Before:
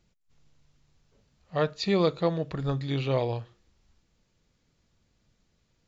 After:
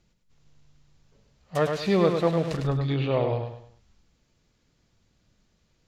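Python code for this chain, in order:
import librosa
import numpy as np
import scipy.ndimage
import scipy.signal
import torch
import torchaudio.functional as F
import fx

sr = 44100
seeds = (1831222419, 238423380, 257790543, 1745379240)

y = fx.crossing_spikes(x, sr, level_db=-20.5, at=(1.55, 2.57))
y = fx.env_lowpass_down(y, sr, base_hz=2500.0, full_db=-24.0)
y = fx.echo_feedback(y, sr, ms=103, feedback_pct=35, wet_db=-6.0)
y = F.gain(torch.from_numpy(y), 2.0).numpy()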